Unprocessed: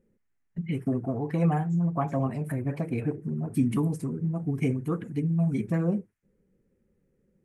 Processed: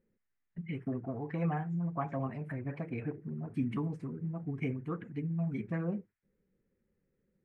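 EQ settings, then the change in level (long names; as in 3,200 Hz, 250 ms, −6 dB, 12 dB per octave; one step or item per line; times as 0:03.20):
head-to-tape spacing loss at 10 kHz 21 dB
parametric band 2,000 Hz +9.5 dB 2 octaves
−8.5 dB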